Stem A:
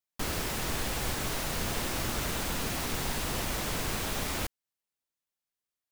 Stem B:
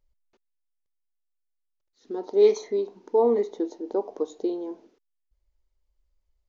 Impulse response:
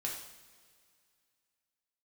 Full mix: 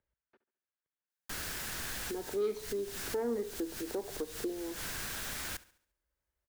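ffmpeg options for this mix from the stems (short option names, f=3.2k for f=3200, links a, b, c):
-filter_complex "[0:a]highshelf=f=2.4k:g=9,adelay=1100,volume=-12dB,asplit=2[a][b];[b]volume=-20dB[c];[1:a]lowpass=2.6k,asoftclip=type=tanh:threshold=-12dB,highpass=91,volume=-2dB,asplit=3[d][e][f];[e]volume=-17.5dB[g];[f]apad=whole_len=309574[h];[a][h]sidechaincompress=threshold=-41dB:ratio=8:attack=16:release=139[i];[c][g]amix=inputs=2:normalize=0,aecho=0:1:70|140|210|280|350|420:1|0.43|0.185|0.0795|0.0342|0.0147[j];[i][d][j]amix=inputs=3:normalize=0,equalizer=f=1.6k:w=2.9:g=9.5,acrossover=split=230|3000[k][l][m];[l]acompressor=threshold=-41dB:ratio=2.5[n];[k][n][m]amix=inputs=3:normalize=0"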